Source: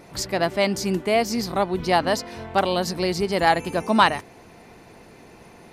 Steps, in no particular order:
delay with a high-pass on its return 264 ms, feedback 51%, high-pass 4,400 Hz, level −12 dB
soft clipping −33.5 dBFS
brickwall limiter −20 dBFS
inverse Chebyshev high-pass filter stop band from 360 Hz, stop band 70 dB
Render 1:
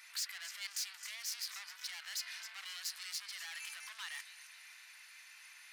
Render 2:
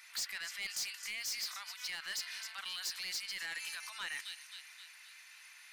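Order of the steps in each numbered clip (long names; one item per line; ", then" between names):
brickwall limiter, then delay with a high-pass on its return, then soft clipping, then inverse Chebyshev high-pass filter
delay with a high-pass on its return, then brickwall limiter, then inverse Chebyshev high-pass filter, then soft clipping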